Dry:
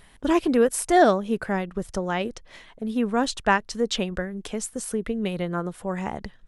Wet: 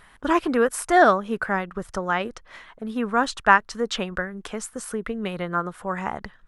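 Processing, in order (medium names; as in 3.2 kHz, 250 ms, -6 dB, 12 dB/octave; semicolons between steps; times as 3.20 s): peaking EQ 1.3 kHz +12 dB 1.3 oct; trim -3 dB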